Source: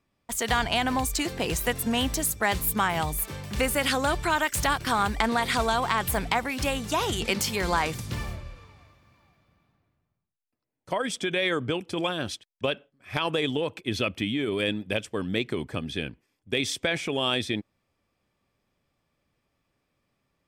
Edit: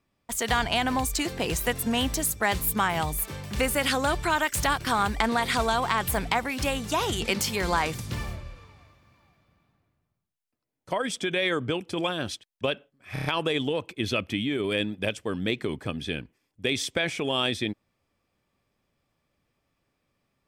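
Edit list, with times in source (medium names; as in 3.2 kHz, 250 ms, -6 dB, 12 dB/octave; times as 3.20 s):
13.13 s: stutter 0.03 s, 5 plays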